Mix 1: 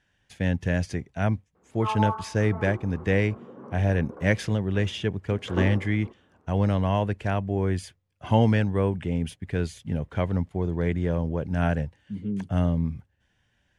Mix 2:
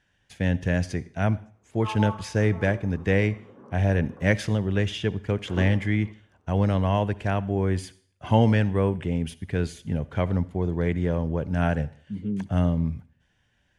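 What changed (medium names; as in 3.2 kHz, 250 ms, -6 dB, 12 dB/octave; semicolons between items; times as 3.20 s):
background -6.0 dB; reverb: on, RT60 0.50 s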